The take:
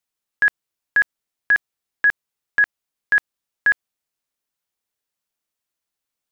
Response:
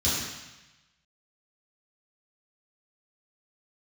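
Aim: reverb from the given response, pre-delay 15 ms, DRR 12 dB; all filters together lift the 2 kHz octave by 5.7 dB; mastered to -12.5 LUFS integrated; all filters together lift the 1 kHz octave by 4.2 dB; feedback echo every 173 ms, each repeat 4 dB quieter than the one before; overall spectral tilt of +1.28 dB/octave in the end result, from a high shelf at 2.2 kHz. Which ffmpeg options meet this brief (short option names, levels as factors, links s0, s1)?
-filter_complex "[0:a]equalizer=f=1000:t=o:g=3.5,equalizer=f=2000:t=o:g=7.5,highshelf=f=2200:g=-3.5,aecho=1:1:173|346|519|692|865|1038|1211|1384|1557:0.631|0.398|0.25|0.158|0.0994|0.0626|0.0394|0.0249|0.0157,asplit=2[s0][s1];[1:a]atrim=start_sample=2205,adelay=15[s2];[s1][s2]afir=irnorm=-1:irlink=0,volume=0.0668[s3];[s0][s3]amix=inputs=2:normalize=0"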